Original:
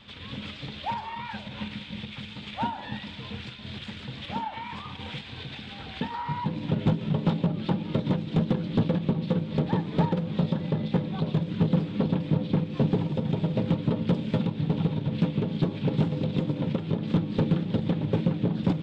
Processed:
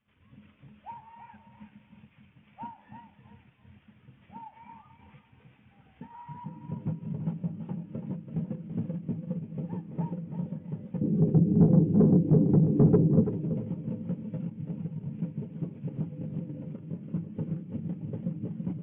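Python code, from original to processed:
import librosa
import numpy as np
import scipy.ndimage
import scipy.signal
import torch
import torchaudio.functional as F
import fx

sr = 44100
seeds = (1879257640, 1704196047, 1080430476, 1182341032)

y = fx.cvsd(x, sr, bps=16000)
y = fx.low_shelf_res(y, sr, hz=590.0, db=11.5, q=3.0, at=(11.01, 13.24))
y = 10.0 ** (-11.0 / 20.0) * np.tanh(y / 10.0 ** (-11.0 / 20.0))
y = fx.echo_feedback(y, sr, ms=334, feedback_pct=32, wet_db=-6.5)
y = fx.spectral_expand(y, sr, expansion=1.5)
y = y * librosa.db_to_amplitude(-3.0)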